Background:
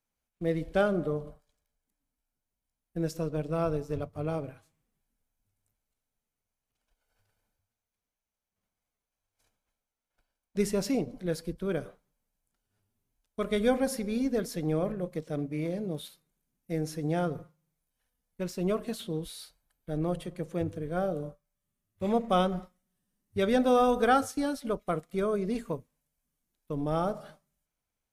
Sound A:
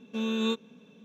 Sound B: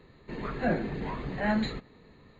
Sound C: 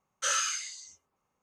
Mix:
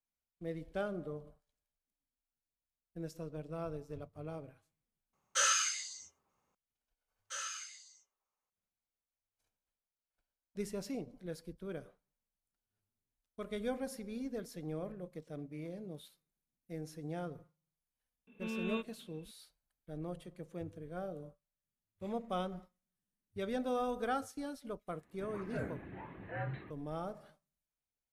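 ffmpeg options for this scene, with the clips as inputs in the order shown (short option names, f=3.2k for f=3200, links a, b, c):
-filter_complex "[3:a]asplit=2[a][b];[0:a]volume=-12dB[c];[b]highpass=520[d];[1:a]highshelf=f=3.6k:t=q:w=3:g=-12[e];[2:a]highpass=f=190:t=q:w=0.5412,highpass=f=190:t=q:w=1.307,lowpass=f=3k:t=q:w=0.5176,lowpass=f=3k:t=q:w=0.7071,lowpass=f=3k:t=q:w=1.932,afreqshift=-86[f];[c]asplit=2[g][h];[g]atrim=end=5.134[i];[a]atrim=end=1.42,asetpts=PTS-STARTPTS,volume=-1dB[j];[h]atrim=start=6.546[k];[d]atrim=end=1.42,asetpts=PTS-STARTPTS,volume=-13dB,afade=t=in:d=0.004:c=hsin,afade=t=out:st=1.416:d=0.004:c=hsin,adelay=7080[l];[e]atrim=end=1.04,asetpts=PTS-STARTPTS,volume=-10.5dB,afade=t=in:d=0.004:c=hsin,afade=t=out:st=1.036:d=0.004:c=hsin,adelay=18270[m];[f]atrim=end=2.39,asetpts=PTS-STARTPTS,volume=-11.5dB,afade=t=in:d=0.004:c=hsin,afade=t=out:st=2.386:d=0.004:c=hsin,adelay=24910[n];[i][j]acrossfade=d=0.004:c1=hsin:c2=hsin[o];[o][k]acrossfade=d=0.004:c1=hsin:c2=hsin[p];[p][l][m][n]amix=inputs=4:normalize=0"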